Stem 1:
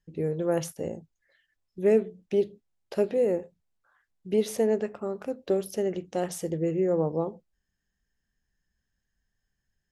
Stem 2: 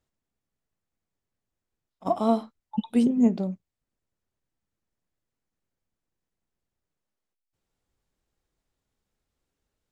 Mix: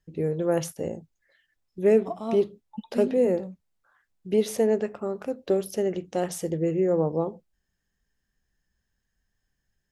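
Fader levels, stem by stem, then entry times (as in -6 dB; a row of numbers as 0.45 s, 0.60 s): +2.0 dB, -9.0 dB; 0.00 s, 0.00 s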